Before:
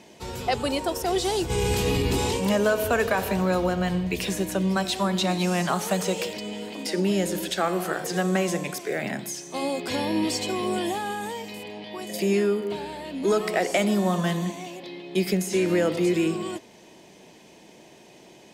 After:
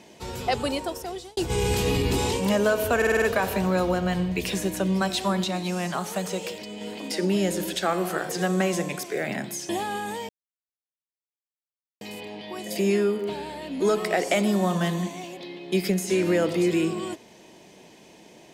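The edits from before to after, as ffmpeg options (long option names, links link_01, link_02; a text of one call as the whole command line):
ffmpeg -i in.wav -filter_complex "[0:a]asplit=11[link_01][link_02][link_03][link_04][link_05][link_06][link_07][link_08][link_09][link_10][link_11];[link_01]atrim=end=1.37,asetpts=PTS-STARTPTS,afade=type=out:start_time=0.62:duration=0.75[link_12];[link_02]atrim=start=1.37:end=3.022,asetpts=PTS-STARTPTS,afade=type=in:duration=0.004:curve=hsin[link_13];[link_03]atrim=start=2.968:end=3.022[link_14];[link_04]atrim=start=2.968:end=3.022[link_15];[link_05]atrim=start=2.968:end=3.022[link_16];[link_06]atrim=start=2.968:end=3.022[link_17];[link_07]atrim=start=2.968:end=5.192[link_18];[link_08]atrim=start=5.188:end=6.562,asetpts=PTS-STARTPTS,volume=-4dB[link_19];[link_09]atrim=start=6.558:end=9.442[link_20];[link_10]atrim=start=10.838:end=11.44,asetpts=PTS-STARTPTS,afade=type=out:start_time=0.598:duration=0.004:curve=hsin,apad=pad_dur=1.72[link_21];[link_11]atrim=start=11.44,asetpts=PTS-STARTPTS,afade=type=in:duration=0.004:curve=hsin[link_22];[link_12][link_13]concat=n=2:v=0:a=1[link_23];[link_23][link_14]acrossfade=duration=0.004:curve1=hsin:curve2=hsin[link_24];[link_24][link_15]acrossfade=duration=0.004:curve1=hsin:curve2=hsin[link_25];[link_25][link_16]acrossfade=duration=0.004:curve1=hsin:curve2=hsin[link_26];[link_26][link_17]acrossfade=duration=0.004:curve1=hsin:curve2=hsin[link_27];[link_27][link_18]acrossfade=duration=0.004:curve1=hsin:curve2=hsin[link_28];[link_28][link_19]acrossfade=duration=0.004:curve1=hsin:curve2=hsin[link_29];[link_29][link_20]acrossfade=duration=0.004:curve1=hsin:curve2=hsin[link_30];[link_21][link_22]concat=n=2:v=0:a=1[link_31];[link_30][link_31]acrossfade=duration=0.004:curve1=hsin:curve2=hsin" out.wav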